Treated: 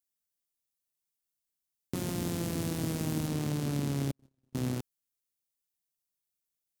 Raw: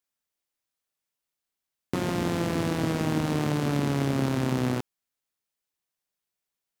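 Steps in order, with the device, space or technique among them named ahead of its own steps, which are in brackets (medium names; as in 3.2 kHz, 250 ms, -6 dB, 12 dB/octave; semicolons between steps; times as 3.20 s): 1.95–3.27 s: treble shelf 8.2 kHz +5.5 dB; 4.11–4.55 s: gate -19 dBFS, range -52 dB; smiley-face EQ (bass shelf 170 Hz +4 dB; peaking EQ 1.2 kHz -6.5 dB 2.8 oct; treble shelf 5.6 kHz +8 dB); trim -6 dB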